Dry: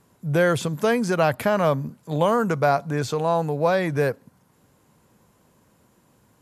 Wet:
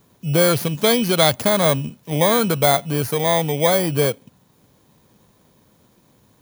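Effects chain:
samples in bit-reversed order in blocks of 16 samples
0:00.52–0:01.32: dynamic equaliser 3,500 Hz, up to +7 dB, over −41 dBFS, Q 1.1
level +3.5 dB

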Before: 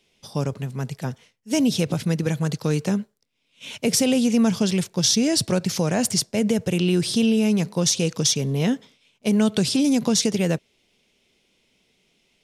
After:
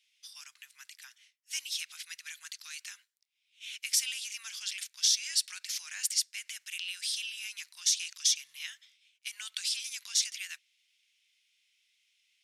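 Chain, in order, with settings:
inverse Chebyshev high-pass filter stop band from 540 Hz, stop band 60 dB
level −5.5 dB

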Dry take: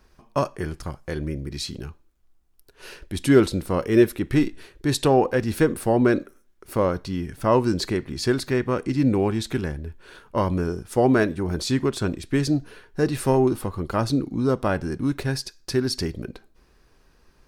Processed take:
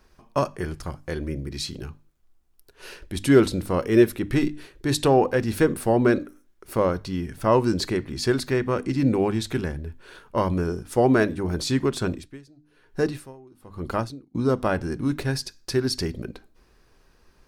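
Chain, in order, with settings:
mains-hum notches 50/100/150/200/250/300 Hz
0:12.09–0:14.35: tremolo with a sine in dB 1.1 Hz, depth 30 dB

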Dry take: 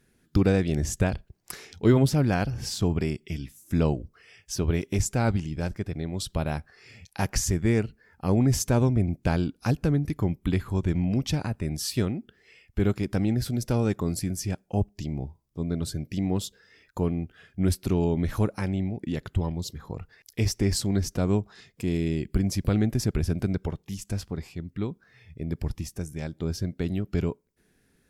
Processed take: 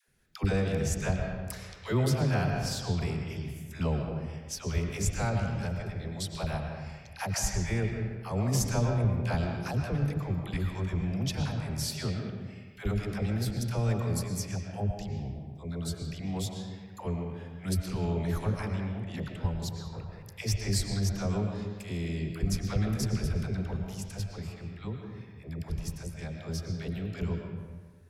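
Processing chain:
parametric band 300 Hz −10.5 dB 0.94 octaves
all-pass dispersion lows, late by 82 ms, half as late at 540 Hz
convolution reverb RT60 1.5 s, pre-delay 75 ms, DRR 3 dB
level −3.5 dB

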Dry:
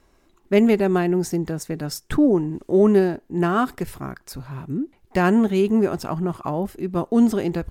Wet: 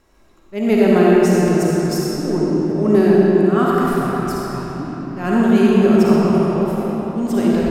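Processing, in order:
volume swells 222 ms
comb and all-pass reverb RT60 4.2 s, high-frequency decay 0.7×, pre-delay 15 ms, DRR −6 dB
level +1 dB

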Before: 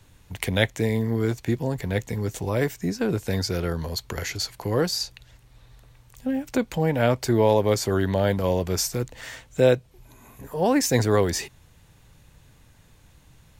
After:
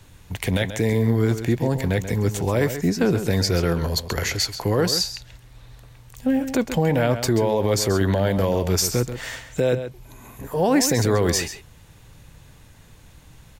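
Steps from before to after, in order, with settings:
brickwall limiter −16 dBFS, peak gain reduction 11 dB
slap from a distant wall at 23 metres, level −10 dB
level +5.5 dB

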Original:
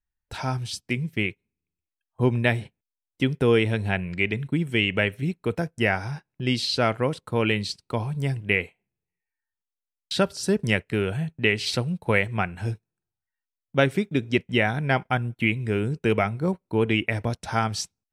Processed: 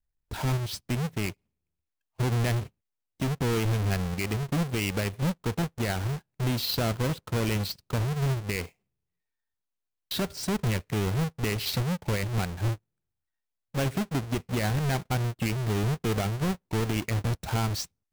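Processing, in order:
each half-wave held at its own peak
low-shelf EQ 140 Hz +6.5 dB
brickwall limiter −14.5 dBFS, peak gain reduction 10 dB
level −6 dB

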